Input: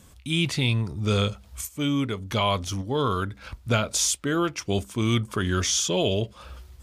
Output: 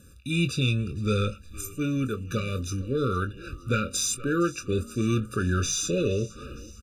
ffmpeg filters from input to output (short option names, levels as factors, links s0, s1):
-filter_complex "[0:a]asplit=2[s0][s1];[s1]asplit=5[s2][s3][s4][s5][s6];[s2]adelay=463,afreqshift=-110,volume=0.0944[s7];[s3]adelay=926,afreqshift=-220,volume=0.0582[s8];[s4]adelay=1389,afreqshift=-330,volume=0.0363[s9];[s5]adelay=1852,afreqshift=-440,volume=0.0224[s10];[s6]adelay=2315,afreqshift=-550,volume=0.014[s11];[s7][s8][s9][s10][s11]amix=inputs=5:normalize=0[s12];[s0][s12]amix=inputs=2:normalize=0,asoftclip=type=tanh:threshold=0.2,asplit=2[s13][s14];[s14]adelay=23,volume=0.316[s15];[s13][s15]amix=inputs=2:normalize=0,afftfilt=real='re*eq(mod(floor(b*sr/1024/580),2),0)':imag='im*eq(mod(floor(b*sr/1024/580),2),0)':win_size=1024:overlap=0.75"